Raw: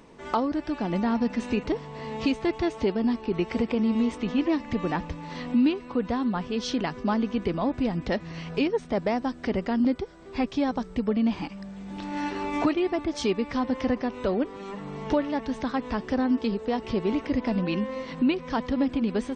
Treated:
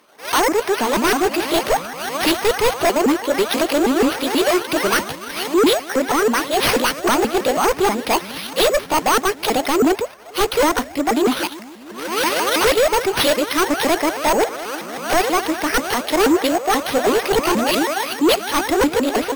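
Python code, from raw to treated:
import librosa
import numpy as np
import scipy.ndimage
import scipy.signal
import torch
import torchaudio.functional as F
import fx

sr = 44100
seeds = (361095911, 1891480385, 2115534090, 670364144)

p1 = fx.pitch_ramps(x, sr, semitones=11.0, every_ms=161)
p2 = fx.highpass(p1, sr, hz=870.0, slope=6)
p3 = np.repeat(p2[::6], 6)[:len(p2)]
p4 = fx.fold_sine(p3, sr, drive_db=14, ceiling_db=-15.0)
p5 = p3 + (p4 * 10.0 ** (-7.0 / 20.0))
p6 = fx.band_widen(p5, sr, depth_pct=70)
y = p6 * 10.0 ** (7.0 / 20.0)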